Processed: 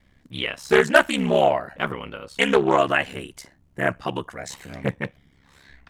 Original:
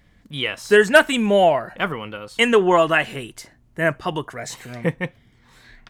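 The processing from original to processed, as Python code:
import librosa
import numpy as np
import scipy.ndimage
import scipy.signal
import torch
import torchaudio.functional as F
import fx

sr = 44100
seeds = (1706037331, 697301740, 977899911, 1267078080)

y = x * np.sin(2.0 * np.pi * 34.0 * np.arange(len(x)) / sr)
y = fx.doppler_dist(y, sr, depth_ms=0.22)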